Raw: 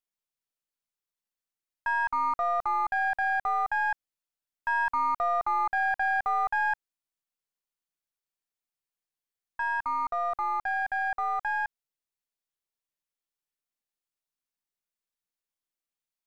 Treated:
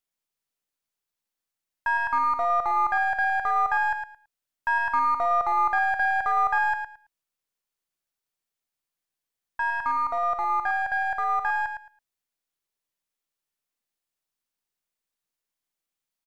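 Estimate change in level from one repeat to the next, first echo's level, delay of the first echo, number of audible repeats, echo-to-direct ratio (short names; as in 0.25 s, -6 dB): -15.0 dB, -8.0 dB, 0.11 s, 2, -8.0 dB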